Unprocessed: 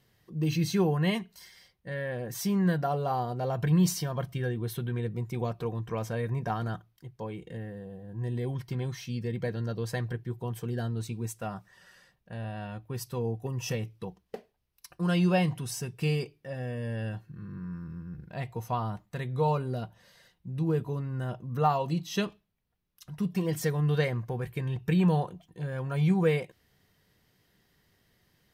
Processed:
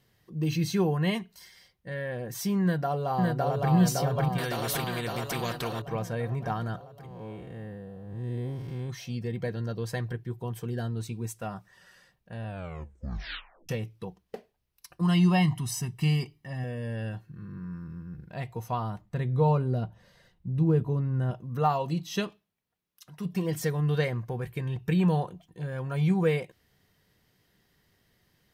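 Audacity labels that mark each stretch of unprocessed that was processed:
2.620000	3.720000	echo throw 560 ms, feedback 65%, level -1 dB
4.380000	5.820000	spectrum-flattening compressor 2:1
7.060000	8.900000	spectral blur width 192 ms
12.460000	12.460000	tape stop 1.23 s
15.010000	16.640000	comb 1 ms, depth 78%
19.010000	21.310000	tilt EQ -2 dB/octave
22.190000	23.240000	high-pass 160 Hz -> 360 Hz 6 dB/octave

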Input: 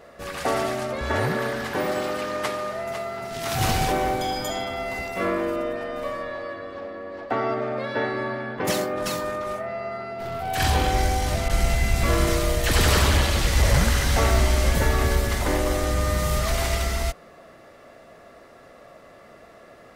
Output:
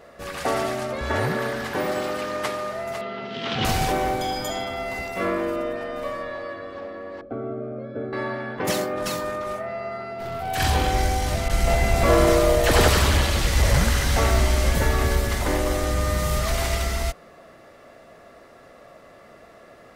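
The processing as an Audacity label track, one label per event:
3.010000	3.650000	cabinet simulation 140–4400 Hz, peaks and dips at 220 Hz +10 dB, 470 Hz +8 dB, 720 Hz -5 dB, 3.1 kHz +9 dB
7.210000	8.130000	boxcar filter over 47 samples
11.670000	12.880000	peaking EQ 610 Hz +9 dB 2 oct

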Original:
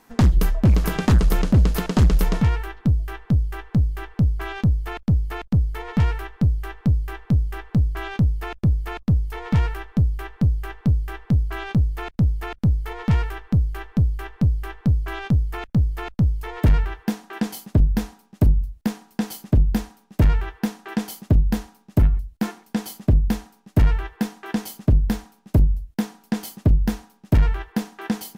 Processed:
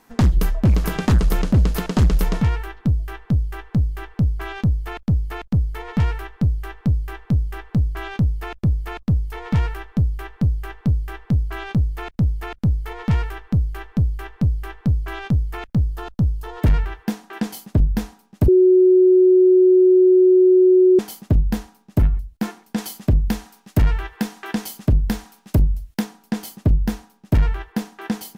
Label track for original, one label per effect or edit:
15.820000	16.620000	peaking EQ 2.2 kHz -12.5 dB 0.42 oct
18.480000	20.990000	bleep 369 Hz -9 dBFS
22.780000	26.040000	tape noise reduction on one side only encoder only

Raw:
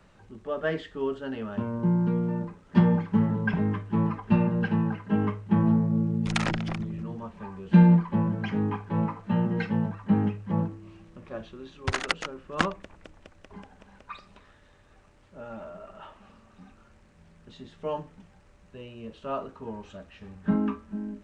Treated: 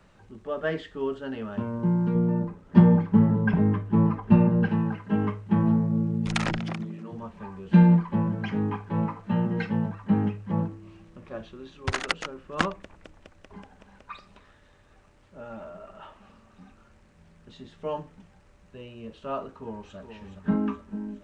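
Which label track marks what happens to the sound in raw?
2.150000	4.690000	tilt shelf lows +4.5 dB, about 1.3 kHz
6.600000	7.110000	high-pass 92 Hz -> 240 Hz 24 dB/octave
19.550000	19.970000	echo throw 420 ms, feedback 60%, level -8.5 dB

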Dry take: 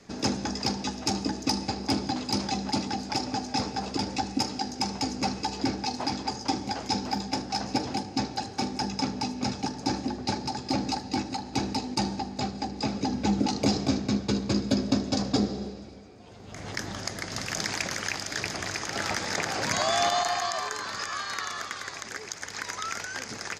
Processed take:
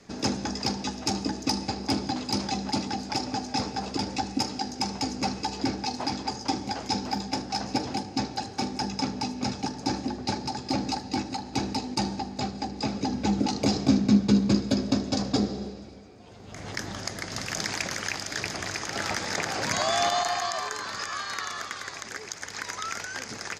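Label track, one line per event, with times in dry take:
13.860000	14.550000	peaking EQ 210 Hz +9 dB 0.82 oct

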